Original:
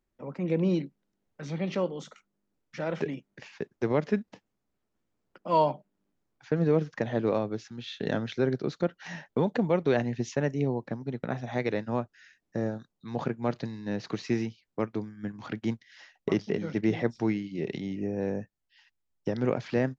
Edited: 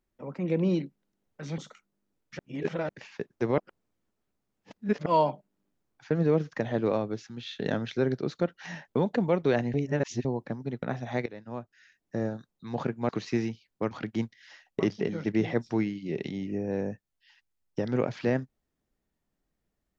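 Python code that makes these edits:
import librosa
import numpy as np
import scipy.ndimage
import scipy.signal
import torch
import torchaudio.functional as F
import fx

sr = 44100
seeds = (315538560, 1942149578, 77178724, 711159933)

y = fx.edit(x, sr, fx.cut(start_s=1.58, length_s=0.41),
    fx.reverse_span(start_s=2.8, length_s=0.5),
    fx.reverse_span(start_s=3.99, length_s=1.48),
    fx.reverse_span(start_s=10.15, length_s=0.51),
    fx.fade_in_from(start_s=11.67, length_s=0.95, floor_db=-17.5),
    fx.cut(start_s=13.5, length_s=0.56),
    fx.cut(start_s=14.88, length_s=0.52), tone=tone)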